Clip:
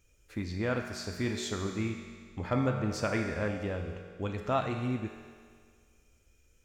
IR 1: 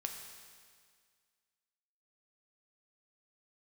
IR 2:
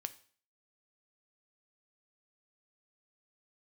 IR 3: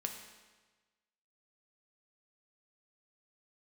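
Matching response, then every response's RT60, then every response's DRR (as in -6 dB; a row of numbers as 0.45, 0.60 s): 1; 1.9, 0.45, 1.3 s; 3.0, 10.5, 3.0 dB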